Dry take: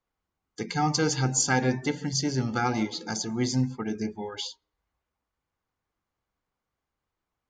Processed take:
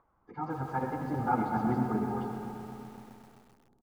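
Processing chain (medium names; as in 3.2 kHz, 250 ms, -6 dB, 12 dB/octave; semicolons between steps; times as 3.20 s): median filter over 5 samples; Doppler pass-by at 3.26 s, 8 m/s, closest 5.8 m; dynamic bell 840 Hz, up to +4 dB, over -50 dBFS, Q 2.3; in parallel at -1.5 dB: peak limiter -23 dBFS, peak gain reduction 7.5 dB; on the sum: upward compressor, threshold -46 dBFS; low-pass sweep 1.1 kHz -> 200 Hz, 5.66–6.77 s; plain phase-vocoder stretch 0.51×; on a send: frequency-shifting echo 356 ms, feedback 35%, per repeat -48 Hz, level -19.5 dB; on the sum: algorithmic reverb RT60 2.8 s, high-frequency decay 0.5×, pre-delay 40 ms, DRR 4.5 dB; bit-crushed delay 129 ms, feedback 80%, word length 8-bit, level -11.5 dB; trim -4 dB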